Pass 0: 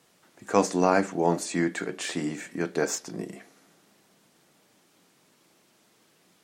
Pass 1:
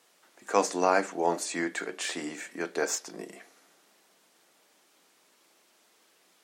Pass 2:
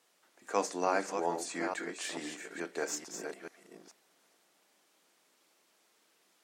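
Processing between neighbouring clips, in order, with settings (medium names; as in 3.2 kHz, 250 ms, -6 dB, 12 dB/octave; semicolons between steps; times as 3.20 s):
Bessel high-pass 460 Hz, order 2
chunks repeated in reverse 435 ms, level -6.5 dB; trim -6.5 dB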